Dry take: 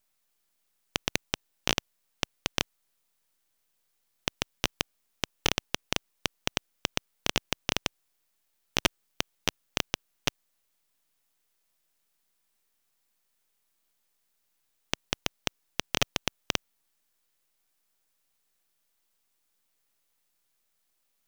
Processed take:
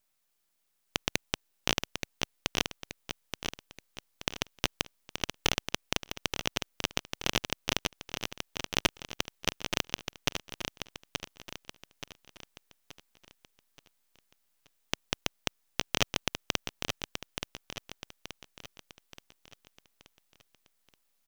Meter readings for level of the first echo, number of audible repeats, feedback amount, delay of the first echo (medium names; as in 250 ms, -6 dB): -6.5 dB, 4, 44%, 877 ms